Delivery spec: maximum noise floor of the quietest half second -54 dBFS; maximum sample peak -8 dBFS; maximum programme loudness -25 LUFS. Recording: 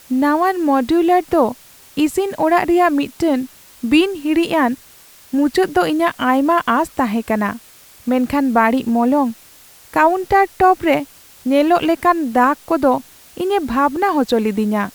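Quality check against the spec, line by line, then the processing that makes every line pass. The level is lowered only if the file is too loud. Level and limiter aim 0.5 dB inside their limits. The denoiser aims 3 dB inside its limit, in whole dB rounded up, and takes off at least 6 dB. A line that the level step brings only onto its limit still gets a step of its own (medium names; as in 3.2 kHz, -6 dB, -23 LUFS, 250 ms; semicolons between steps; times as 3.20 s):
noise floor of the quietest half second -45 dBFS: fail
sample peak -2.5 dBFS: fail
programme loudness -16.5 LUFS: fail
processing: noise reduction 6 dB, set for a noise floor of -45 dBFS; trim -9 dB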